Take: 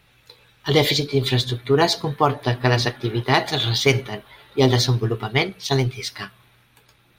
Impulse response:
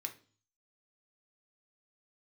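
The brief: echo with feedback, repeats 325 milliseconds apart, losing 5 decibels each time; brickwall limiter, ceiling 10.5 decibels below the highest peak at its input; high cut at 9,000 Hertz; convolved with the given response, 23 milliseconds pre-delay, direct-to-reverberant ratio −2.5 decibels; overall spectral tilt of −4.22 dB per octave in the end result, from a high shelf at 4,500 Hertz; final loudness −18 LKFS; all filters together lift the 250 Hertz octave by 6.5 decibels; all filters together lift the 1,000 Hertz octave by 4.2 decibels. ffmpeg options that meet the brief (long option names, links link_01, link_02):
-filter_complex "[0:a]lowpass=9000,equalizer=frequency=250:width_type=o:gain=8,equalizer=frequency=1000:width_type=o:gain=4.5,highshelf=frequency=4500:gain=7,alimiter=limit=-9.5dB:level=0:latency=1,aecho=1:1:325|650|975|1300|1625|1950|2275:0.562|0.315|0.176|0.0988|0.0553|0.031|0.0173,asplit=2[link_01][link_02];[1:a]atrim=start_sample=2205,adelay=23[link_03];[link_02][link_03]afir=irnorm=-1:irlink=0,volume=4dB[link_04];[link_01][link_04]amix=inputs=2:normalize=0,volume=-1.5dB"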